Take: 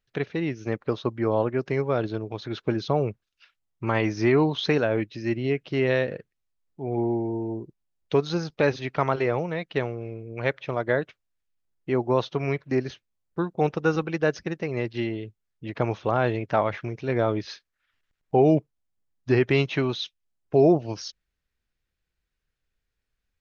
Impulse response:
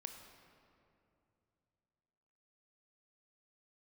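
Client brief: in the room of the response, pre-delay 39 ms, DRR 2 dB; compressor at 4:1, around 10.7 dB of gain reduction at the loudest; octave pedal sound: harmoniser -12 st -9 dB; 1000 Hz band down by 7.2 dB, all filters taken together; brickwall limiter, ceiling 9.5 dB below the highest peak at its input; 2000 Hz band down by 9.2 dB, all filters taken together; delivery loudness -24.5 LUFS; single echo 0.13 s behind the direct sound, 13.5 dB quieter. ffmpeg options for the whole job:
-filter_complex "[0:a]equalizer=f=1k:t=o:g=-8.5,equalizer=f=2k:t=o:g=-9,acompressor=threshold=-28dB:ratio=4,alimiter=level_in=1.5dB:limit=-24dB:level=0:latency=1,volume=-1.5dB,aecho=1:1:130:0.211,asplit=2[a][b];[1:a]atrim=start_sample=2205,adelay=39[c];[b][c]afir=irnorm=-1:irlink=0,volume=2dB[d];[a][d]amix=inputs=2:normalize=0,asplit=2[e][f];[f]asetrate=22050,aresample=44100,atempo=2,volume=-9dB[g];[e][g]amix=inputs=2:normalize=0,volume=9.5dB"

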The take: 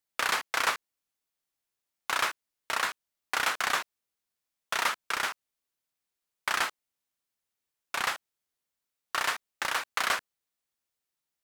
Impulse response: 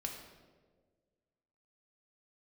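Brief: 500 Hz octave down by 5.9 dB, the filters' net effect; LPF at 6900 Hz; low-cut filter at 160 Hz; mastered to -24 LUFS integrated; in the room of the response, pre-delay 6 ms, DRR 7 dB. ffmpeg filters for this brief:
-filter_complex "[0:a]highpass=160,lowpass=6.9k,equalizer=f=500:t=o:g=-8,asplit=2[a][b];[1:a]atrim=start_sample=2205,adelay=6[c];[b][c]afir=irnorm=-1:irlink=0,volume=-6.5dB[d];[a][d]amix=inputs=2:normalize=0,volume=6.5dB"

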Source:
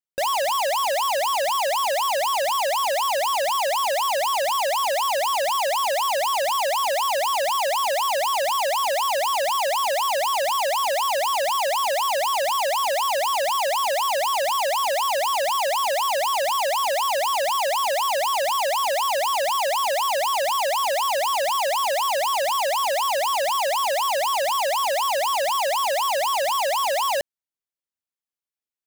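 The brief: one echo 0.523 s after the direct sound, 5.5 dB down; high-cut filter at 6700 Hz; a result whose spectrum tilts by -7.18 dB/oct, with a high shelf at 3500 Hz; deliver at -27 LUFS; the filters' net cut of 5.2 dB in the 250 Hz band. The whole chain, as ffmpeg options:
-af "lowpass=6.7k,equalizer=f=250:t=o:g=-7,highshelf=f=3.5k:g=-4,aecho=1:1:523:0.531,volume=-4.5dB"

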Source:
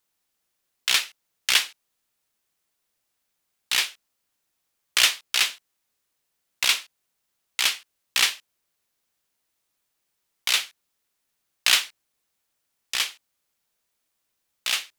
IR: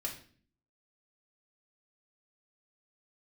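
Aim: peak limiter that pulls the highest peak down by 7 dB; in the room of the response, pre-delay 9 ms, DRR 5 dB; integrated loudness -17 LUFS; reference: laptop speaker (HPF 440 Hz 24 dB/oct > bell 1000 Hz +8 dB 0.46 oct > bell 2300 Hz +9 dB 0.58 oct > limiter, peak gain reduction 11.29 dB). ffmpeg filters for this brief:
-filter_complex "[0:a]alimiter=limit=-10.5dB:level=0:latency=1,asplit=2[a][b];[1:a]atrim=start_sample=2205,adelay=9[c];[b][c]afir=irnorm=-1:irlink=0,volume=-6dB[d];[a][d]amix=inputs=2:normalize=0,highpass=f=440:w=0.5412,highpass=f=440:w=1.3066,equalizer=f=1k:t=o:w=0.46:g=8,equalizer=f=2.3k:t=o:w=0.58:g=9,volume=11dB,alimiter=limit=-4.5dB:level=0:latency=1"

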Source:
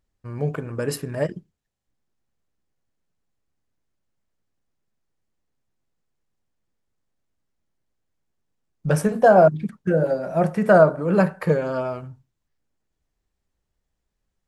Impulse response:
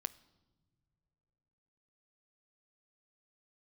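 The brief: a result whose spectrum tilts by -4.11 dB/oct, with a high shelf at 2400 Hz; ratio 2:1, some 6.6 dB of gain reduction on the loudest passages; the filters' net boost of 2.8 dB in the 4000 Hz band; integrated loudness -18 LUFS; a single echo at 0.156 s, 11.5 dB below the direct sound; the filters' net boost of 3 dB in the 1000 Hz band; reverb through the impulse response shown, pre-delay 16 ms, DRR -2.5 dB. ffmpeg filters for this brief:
-filter_complex "[0:a]equalizer=f=1k:t=o:g=5.5,highshelf=f=2.4k:g=-4,equalizer=f=4k:t=o:g=7.5,acompressor=threshold=-19dB:ratio=2,aecho=1:1:156:0.266,asplit=2[a][b];[1:a]atrim=start_sample=2205,adelay=16[c];[b][c]afir=irnorm=-1:irlink=0,volume=4dB[d];[a][d]amix=inputs=2:normalize=0,volume=0.5dB"

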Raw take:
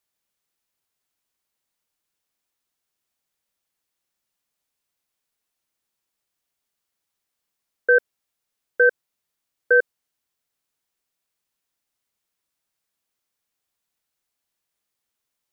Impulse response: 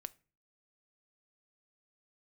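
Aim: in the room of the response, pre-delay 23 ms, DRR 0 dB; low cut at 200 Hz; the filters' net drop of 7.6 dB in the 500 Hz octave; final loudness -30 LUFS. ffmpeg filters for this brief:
-filter_complex "[0:a]highpass=200,equalizer=f=500:t=o:g=-7.5,asplit=2[a][b];[1:a]atrim=start_sample=2205,adelay=23[c];[b][c]afir=irnorm=-1:irlink=0,volume=4dB[d];[a][d]amix=inputs=2:normalize=0,volume=-7dB"

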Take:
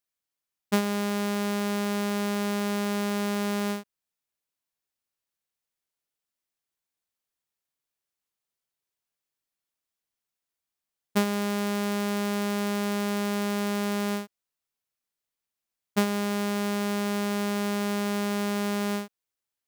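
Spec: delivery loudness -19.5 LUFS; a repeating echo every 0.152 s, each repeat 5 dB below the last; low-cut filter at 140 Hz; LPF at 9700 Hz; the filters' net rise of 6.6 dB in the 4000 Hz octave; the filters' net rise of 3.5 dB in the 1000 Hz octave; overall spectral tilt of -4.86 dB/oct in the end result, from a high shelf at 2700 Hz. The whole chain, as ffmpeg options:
-af "highpass=140,lowpass=9.7k,equalizer=f=1k:t=o:g=3.5,highshelf=f=2.7k:g=4,equalizer=f=4k:t=o:g=5,aecho=1:1:152|304|456|608|760|912|1064:0.562|0.315|0.176|0.0988|0.0553|0.031|0.0173,volume=2dB"

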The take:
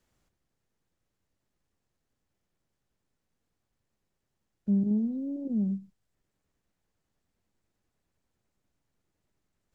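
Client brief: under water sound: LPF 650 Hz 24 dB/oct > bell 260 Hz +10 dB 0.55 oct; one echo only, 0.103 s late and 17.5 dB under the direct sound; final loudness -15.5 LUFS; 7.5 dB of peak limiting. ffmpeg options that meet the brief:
-af "alimiter=level_in=2.5dB:limit=-24dB:level=0:latency=1,volume=-2.5dB,lowpass=f=650:w=0.5412,lowpass=f=650:w=1.3066,equalizer=f=260:t=o:w=0.55:g=10,aecho=1:1:103:0.133,volume=12dB"

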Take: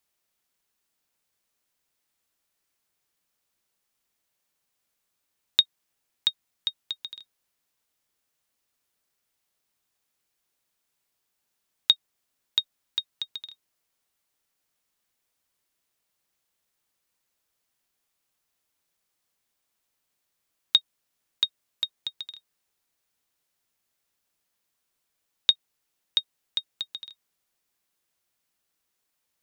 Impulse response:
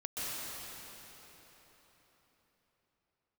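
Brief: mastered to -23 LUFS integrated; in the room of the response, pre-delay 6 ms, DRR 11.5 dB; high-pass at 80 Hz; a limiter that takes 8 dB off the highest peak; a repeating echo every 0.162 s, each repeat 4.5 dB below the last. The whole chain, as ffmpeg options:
-filter_complex "[0:a]highpass=80,alimiter=limit=-13dB:level=0:latency=1,aecho=1:1:162|324|486|648|810|972|1134|1296|1458:0.596|0.357|0.214|0.129|0.0772|0.0463|0.0278|0.0167|0.01,asplit=2[a][b];[1:a]atrim=start_sample=2205,adelay=6[c];[b][c]afir=irnorm=-1:irlink=0,volume=-16dB[d];[a][d]amix=inputs=2:normalize=0,volume=9.5dB"

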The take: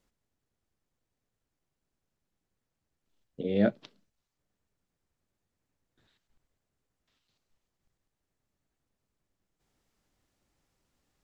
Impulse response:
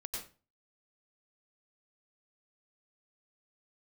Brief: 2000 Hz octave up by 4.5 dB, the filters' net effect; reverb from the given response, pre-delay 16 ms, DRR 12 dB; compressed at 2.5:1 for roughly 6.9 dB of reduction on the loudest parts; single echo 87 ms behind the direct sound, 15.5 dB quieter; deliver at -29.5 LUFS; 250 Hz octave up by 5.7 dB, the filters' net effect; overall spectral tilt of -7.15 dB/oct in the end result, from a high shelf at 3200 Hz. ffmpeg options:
-filter_complex "[0:a]equalizer=f=250:t=o:g=7.5,equalizer=f=2k:t=o:g=8,highshelf=f=3.2k:g=-6,acompressor=threshold=-25dB:ratio=2.5,aecho=1:1:87:0.168,asplit=2[a][b];[1:a]atrim=start_sample=2205,adelay=16[c];[b][c]afir=irnorm=-1:irlink=0,volume=-11.5dB[d];[a][d]amix=inputs=2:normalize=0,volume=0.5dB"

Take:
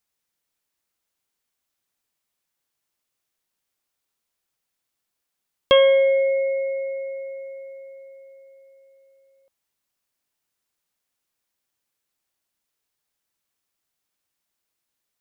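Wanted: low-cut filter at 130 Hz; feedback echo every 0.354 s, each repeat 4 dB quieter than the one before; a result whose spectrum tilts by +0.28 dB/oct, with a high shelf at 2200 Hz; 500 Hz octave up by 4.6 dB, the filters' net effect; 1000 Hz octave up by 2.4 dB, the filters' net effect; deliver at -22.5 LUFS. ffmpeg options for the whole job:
-af "highpass=130,equalizer=f=500:t=o:g=4.5,equalizer=f=1k:t=o:g=3.5,highshelf=f=2.2k:g=-8,aecho=1:1:354|708|1062|1416|1770|2124|2478|2832|3186:0.631|0.398|0.25|0.158|0.0994|0.0626|0.0394|0.0249|0.0157,volume=-9.5dB"

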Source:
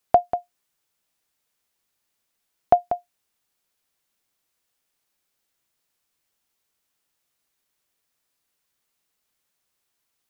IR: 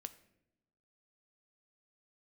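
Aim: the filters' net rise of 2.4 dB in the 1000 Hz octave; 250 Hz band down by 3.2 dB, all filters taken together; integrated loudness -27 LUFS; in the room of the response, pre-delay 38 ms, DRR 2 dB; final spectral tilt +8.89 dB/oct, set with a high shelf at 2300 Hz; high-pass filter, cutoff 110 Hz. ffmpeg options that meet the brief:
-filter_complex "[0:a]highpass=110,equalizer=f=250:t=o:g=-4.5,equalizer=f=1k:t=o:g=4.5,highshelf=f=2.3k:g=4.5,asplit=2[a][b];[1:a]atrim=start_sample=2205,adelay=38[c];[b][c]afir=irnorm=-1:irlink=0,volume=2.5dB[d];[a][d]amix=inputs=2:normalize=0,volume=-7dB"

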